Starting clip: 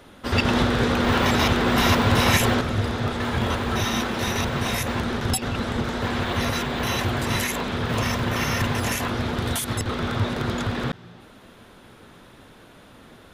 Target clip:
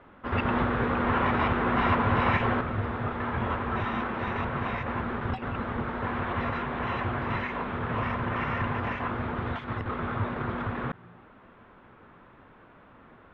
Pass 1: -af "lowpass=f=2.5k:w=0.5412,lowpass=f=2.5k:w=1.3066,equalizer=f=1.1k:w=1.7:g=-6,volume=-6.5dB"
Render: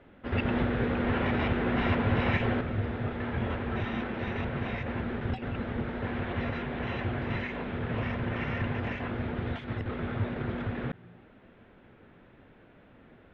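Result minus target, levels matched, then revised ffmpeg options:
1000 Hz band -6.0 dB
-af "lowpass=f=2.5k:w=0.5412,lowpass=f=2.5k:w=1.3066,equalizer=f=1.1k:w=1.7:g=6,volume=-6.5dB"

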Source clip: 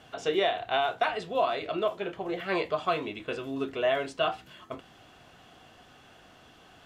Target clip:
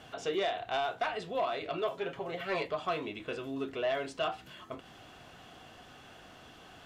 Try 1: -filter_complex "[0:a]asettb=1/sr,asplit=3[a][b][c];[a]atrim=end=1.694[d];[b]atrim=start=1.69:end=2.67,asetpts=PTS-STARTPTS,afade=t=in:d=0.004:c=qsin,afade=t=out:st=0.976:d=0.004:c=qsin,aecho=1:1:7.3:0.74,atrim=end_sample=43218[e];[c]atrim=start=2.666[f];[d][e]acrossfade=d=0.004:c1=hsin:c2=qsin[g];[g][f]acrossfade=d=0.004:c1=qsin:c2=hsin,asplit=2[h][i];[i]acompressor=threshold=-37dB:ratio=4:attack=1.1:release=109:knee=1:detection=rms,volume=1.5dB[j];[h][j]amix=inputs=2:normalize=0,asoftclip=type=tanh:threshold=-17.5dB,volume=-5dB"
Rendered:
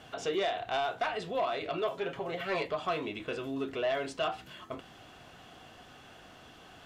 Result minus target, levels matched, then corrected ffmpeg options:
compressor: peak gain reduction -8 dB
-filter_complex "[0:a]asettb=1/sr,asplit=3[a][b][c];[a]atrim=end=1.694[d];[b]atrim=start=1.69:end=2.67,asetpts=PTS-STARTPTS,afade=t=in:d=0.004:c=qsin,afade=t=out:st=0.976:d=0.004:c=qsin,aecho=1:1:7.3:0.74,atrim=end_sample=43218[e];[c]atrim=start=2.666[f];[d][e]acrossfade=d=0.004:c1=hsin:c2=qsin[g];[g][f]acrossfade=d=0.004:c1=qsin:c2=hsin,asplit=2[h][i];[i]acompressor=threshold=-47.5dB:ratio=4:attack=1.1:release=109:knee=1:detection=rms,volume=1.5dB[j];[h][j]amix=inputs=2:normalize=0,asoftclip=type=tanh:threshold=-17.5dB,volume=-5dB"

